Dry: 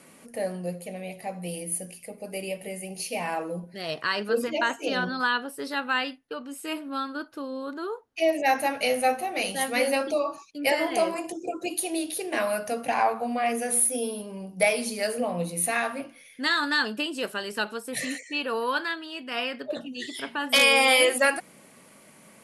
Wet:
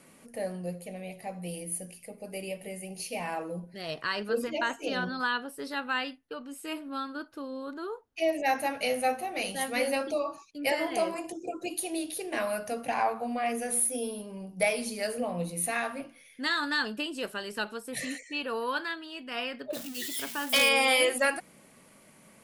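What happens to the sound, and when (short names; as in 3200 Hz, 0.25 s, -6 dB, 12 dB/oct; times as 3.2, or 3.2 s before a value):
19.73–20.69 switching spikes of -24.5 dBFS
whole clip: low shelf 73 Hz +12 dB; gain -4.5 dB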